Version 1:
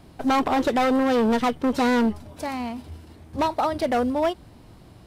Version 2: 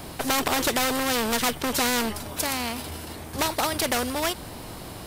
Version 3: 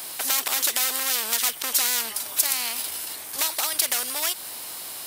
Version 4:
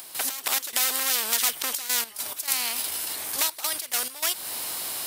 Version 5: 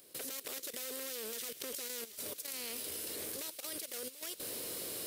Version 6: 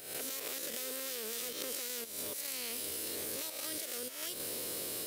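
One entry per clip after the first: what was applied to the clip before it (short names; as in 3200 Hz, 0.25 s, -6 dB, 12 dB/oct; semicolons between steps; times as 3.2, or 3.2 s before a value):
high shelf 8900 Hz +12 dB; spectral compressor 2:1; gain +7 dB
low shelf 290 Hz -8.5 dB; compressor 2:1, threshold -29 dBFS, peak gain reduction 5.5 dB; tilt +4 dB/oct; gain -2 dB
upward compressor, threshold -25 dBFS; step gate ".x.x.xxxxxxx" 103 bpm -12 dB
resonant low shelf 630 Hz +8.5 dB, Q 3; level quantiser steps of 18 dB; thin delay 0.248 s, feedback 84%, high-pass 2500 Hz, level -14.5 dB; gain -6 dB
spectral swells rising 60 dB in 0.75 s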